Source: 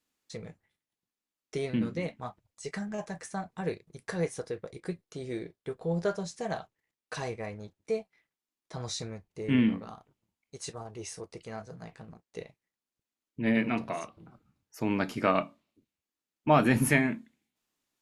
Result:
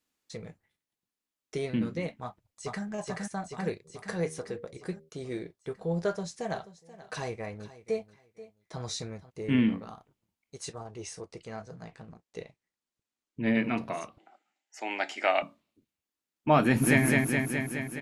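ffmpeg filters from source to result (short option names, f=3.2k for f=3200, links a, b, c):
-filter_complex "[0:a]asplit=2[a][b];[b]afade=t=in:st=2.23:d=0.01,afade=t=out:st=2.84:d=0.01,aecho=0:1:430|860|1290|1720|2150|2580|3010|3440|3870|4300|4730:0.841395|0.546907|0.355489|0.231068|0.150194|0.0976263|0.0634571|0.0412471|0.0268106|0.0174269|0.0113275[c];[a][c]amix=inputs=2:normalize=0,asplit=3[d][e][f];[d]afade=t=out:st=3.84:d=0.02[g];[e]bandreject=f=79.1:t=h:w=4,bandreject=f=158.2:t=h:w=4,bandreject=f=237.3:t=h:w=4,bandreject=f=316.4:t=h:w=4,bandreject=f=395.5:t=h:w=4,bandreject=f=474.6:t=h:w=4,bandreject=f=553.7:t=h:w=4,afade=t=in:st=3.84:d=0.02,afade=t=out:st=5.08:d=0.02[h];[f]afade=t=in:st=5.08:d=0.02[i];[g][h][i]amix=inputs=3:normalize=0,asplit=3[j][k][l];[j]afade=t=out:st=6.54:d=0.02[m];[k]aecho=1:1:483|966:0.141|0.0325,afade=t=in:st=6.54:d=0.02,afade=t=out:st=9.29:d=0.02[n];[l]afade=t=in:st=9.29:d=0.02[o];[m][n][o]amix=inputs=3:normalize=0,asettb=1/sr,asplit=3[p][q][r];[p]atrim=end=10.694[s];[q]atrim=start=10.69:end=13.64,asetpts=PTS-STARTPTS,afade=t=in:d=0.004:c=qsin,afade=t=out:st=2.946:d=0.004:c=qsin,lowpass=f=9.5k:w=0.5412,lowpass=f=9.5k:w=1.3066[t];[r]atrim=start=13.636[u];[s][t]acrossfade=d=0.004:c1=hsin:c2=qsin[v];[v][u]acrossfade=d=0.004:c1=qsin:c2=hsin,asettb=1/sr,asplit=3[w][x][y];[w]atrim=end=14.184[z];[x]atrim=start=14.18:end=15.42,asetpts=PTS-STARTPTS,afade=t=in:d=0.004:c=qsin,afade=t=out:st=1.236:d=0.004:c=qsin,highpass=f=400:w=0.5412,highpass=f=400:w=1.3066,equalizer=f=460:t=q:w=4:g=-10,equalizer=f=760:t=q:w=4:g=10,equalizer=f=1.1k:t=q:w=4:g=-10,equalizer=f=2k:t=q:w=4:g=9,equalizer=f=3k:t=q:w=4:g=6,equalizer=f=7.4k:t=q:w=4:g=7,lowpass=f=8.1k:w=0.5412,lowpass=f=8.1k:w=1.3066[aa];[y]atrim=start=15.416[ab];[z][aa]acrossfade=d=0.004:c1=hsin:c2=qsin[ac];[ac][ab]acrossfade=d=0.004:c1=qsin:c2=hsin,asplit=2[ad][ae];[ae]afade=t=in:st=16.62:d=0.01,afade=t=out:st=17.03:d=0.01,aecho=0:1:210|420|630|840|1050|1260|1470|1680|1890|2100|2310|2520:0.794328|0.55603|0.389221|0.272455|0.190718|0.133503|0.0934519|0.0654163|0.0457914|0.032054|0.0224378|0.0157065[af];[ad][af]amix=inputs=2:normalize=0"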